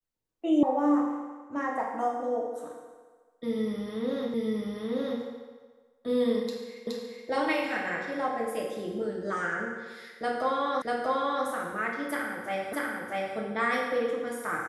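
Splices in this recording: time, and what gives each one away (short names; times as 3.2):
0.63 sound cut off
4.34 repeat of the last 0.88 s
6.87 repeat of the last 0.42 s
10.82 repeat of the last 0.64 s
12.73 repeat of the last 0.64 s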